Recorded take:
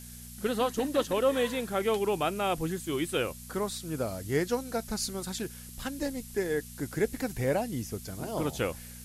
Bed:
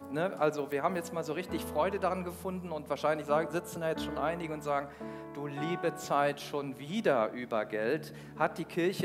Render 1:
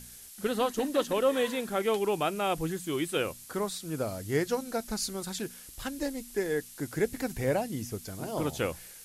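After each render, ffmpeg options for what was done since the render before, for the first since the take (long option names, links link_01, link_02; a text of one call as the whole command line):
ffmpeg -i in.wav -af "bandreject=frequency=60:width_type=h:width=4,bandreject=frequency=120:width_type=h:width=4,bandreject=frequency=180:width_type=h:width=4,bandreject=frequency=240:width_type=h:width=4" out.wav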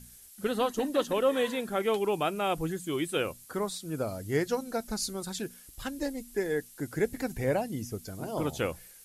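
ffmpeg -i in.wav -af "afftdn=noise_reduction=7:noise_floor=-49" out.wav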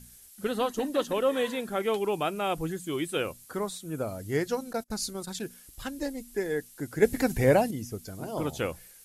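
ffmpeg -i in.wav -filter_complex "[0:a]asettb=1/sr,asplit=3[link_01][link_02][link_03];[link_01]atrim=end=3.714[link_04];[link_02]atrim=start=3.71:end=4.19,asetpts=PTS-STARTPTS,afade=type=in:duration=0.004:curve=qsin,afade=type=out:start_time=0.476:duration=0.004:curve=qsin,equalizer=frequency=4800:width_type=o:width=0.38:gain=-7.5[link_05];[link_03]atrim=start=4.186[link_06];[link_04][link_05]acrossfade=duration=0.004:curve1=hsin:curve2=qsin[link_07];[link_07][link_06]acrossfade=duration=0.004:curve1=qsin:curve2=hsin,asettb=1/sr,asplit=3[link_08][link_09][link_10];[link_08]atrim=end=4.734[link_11];[link_09]atrim=start=4.73:end=5.42,asetpts=PTS-STARTPTS,afade=type=in:duration=0.004:curve=qsin,afade=type=out:start_time=0.686:duration=0.004:curve=qsin,agate=range=-28dB:threshold=-40dB:ratio=16:release=100:detection=peak[link_12];[link_10]atrim=start=5.416[link_13];[link_11][link_12]acrossfade=duration=0.004:curve1=hsin:curve2=qsin[link_14];[link_14][link_13]acrossfade=duration=0.004:curve1=qsin:curve2=hsin,asettb=1/sr,asplit=3[link_15][link_16][link_17];[link_15]atrim=end=7.024[link_18];[link_16]atrim=start=7.02:end=7.71,asetpts=PTS-STARTPTS,afade=type=in:duration=0.004:curve=qsin,afade=type=out:start_time=0.686:duration=0.004:curve=qsin,acontrast=84[link_19];[link_17]atrim=start=7.706[link_20];[link_18][link_19]acrossfade=duration=0.004:curve1=hsin:curve2=qsin[link_21];[link_21][link_20]acrossfade=duration=0.004:curve1=qsin:curve2=hsin" out.wav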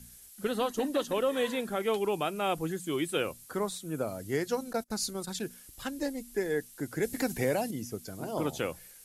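ffmpeg -i in.wav -filter_complex "[0:a]acrossover=split=130|3300[link_01][link_02][link_03];[link_01]acompressor=threshold=-52dB:ratio=6[link_04];[link_02]alimiter=limit=-19.5dB:level=0:latency=1:release=239[link_05];[link_04][link_05][link_03]amix=inputs=3:normalize=0" out.wav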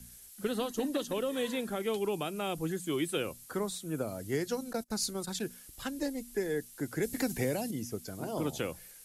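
ffmpeg -i in.wav -filter_complex "[0:a]acrossover=split=400|3000[link_01][link_02][link_03];[link_02]acompressor=threshold=-36dB:ratio=6[link_04];[link_01][link_04][link_03]amix=inputs=3:normalize=0" out.wav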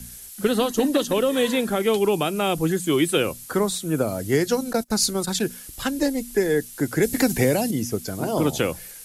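ffmpeg -i in.wav -af "volume=12dB" out.wav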